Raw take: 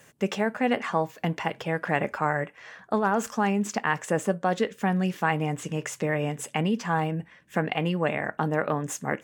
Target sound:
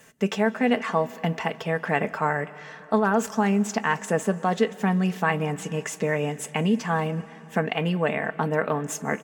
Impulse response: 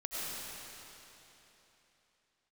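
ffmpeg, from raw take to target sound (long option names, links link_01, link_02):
-filter_complex "[0:a]aecho=1:1:4.5:0.44,asplit=2[link_01][link_02];[1:a]atrim=start_sample=2205,adelay=41[link_03];[link_02][link_03]afir=irnorm=-1:irlink=0,volume=-21.5dB[link_04];[link_01][link_04]amix=inputs=2:normalize=0,volume=1dB"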